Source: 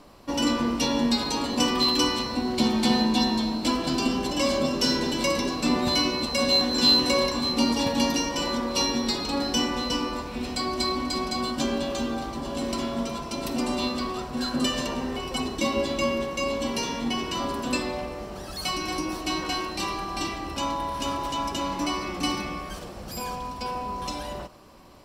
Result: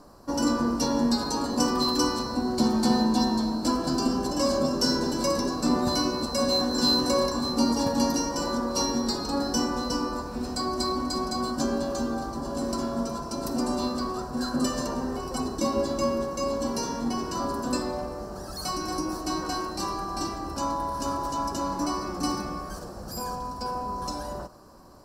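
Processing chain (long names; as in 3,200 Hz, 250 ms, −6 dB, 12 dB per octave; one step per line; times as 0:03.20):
flat-topped bell 2,700 Hz −15 dB 1.1 octaves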